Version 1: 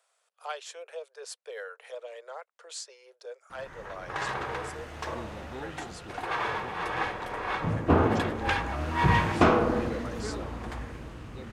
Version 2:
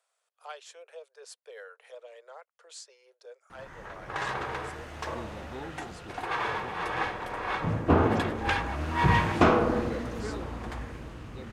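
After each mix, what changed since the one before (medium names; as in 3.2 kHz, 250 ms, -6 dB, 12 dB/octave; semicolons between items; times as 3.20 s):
speech -6.0 dB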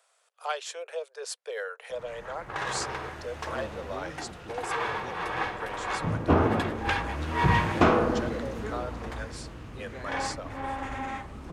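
speech +11.0 dB; background: entry -1.60 s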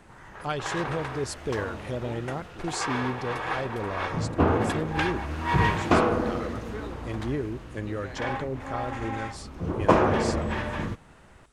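speech: remove steep high-pass 460 Hz 72 dB/octave; background: entry -1.90 s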